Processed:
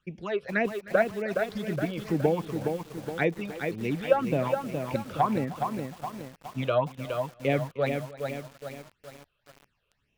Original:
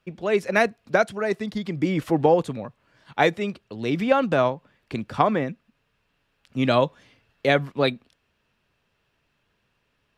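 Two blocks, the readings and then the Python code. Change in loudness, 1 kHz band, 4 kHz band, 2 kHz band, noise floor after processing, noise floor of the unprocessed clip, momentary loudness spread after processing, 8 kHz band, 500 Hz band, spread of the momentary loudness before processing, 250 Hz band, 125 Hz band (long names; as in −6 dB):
−6.0 dB, −5.5 dB, −9.5 dB, −6.0 dB, −76 dBFS, −72 dBFS, 13 LU, can't be measured, −4.5 dB, 14 LU, −5.0 dB, −2.5 dB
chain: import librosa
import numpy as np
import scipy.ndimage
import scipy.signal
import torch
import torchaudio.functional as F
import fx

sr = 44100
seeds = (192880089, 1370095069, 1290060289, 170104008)

p1 = fx.phaser_stages(x, sr, stages=8, low_hz=240.0, high_hz=1400.0, hz=1.9, feedback_pct=30)
p2 = fx.env_lowpass_down(p1, sr, base_hz=2000.0, full_db=-20.5)
p3 = p2 + fx.echo_feedback(p2, sr, ms=308, feedback_pct=23, wet_db=-19.0, dry=0)
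p4 = fx.echo_crushed(p3, sr, ms=417, feedback_pct=55, bits=7, wet_db=-5)
y = F.gain(torch.from_numpy(p4), -3.0).numpy()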